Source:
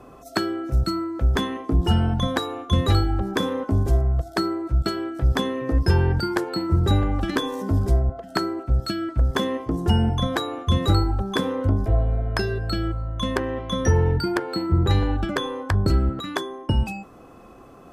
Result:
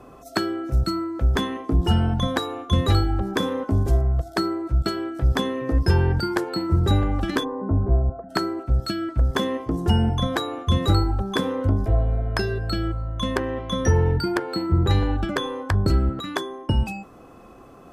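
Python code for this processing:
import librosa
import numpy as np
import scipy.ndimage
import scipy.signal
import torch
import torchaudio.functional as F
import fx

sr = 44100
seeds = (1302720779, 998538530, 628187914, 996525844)

y = fx.lowpass(x, sr, hz=1300.0, slope=24, at=(7.43, 8.29), fade=0.02)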